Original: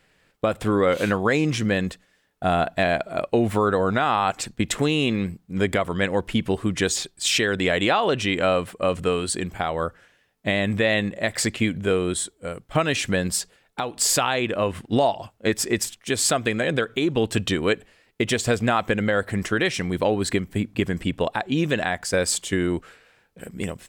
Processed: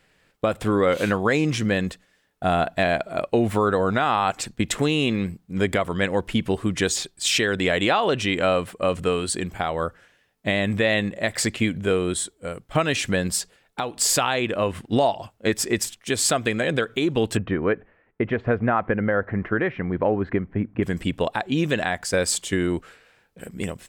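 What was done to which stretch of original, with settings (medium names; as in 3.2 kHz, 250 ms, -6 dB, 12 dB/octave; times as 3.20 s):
17.37–20.83 s: low-pass 1.9 kHz 24 dB/octave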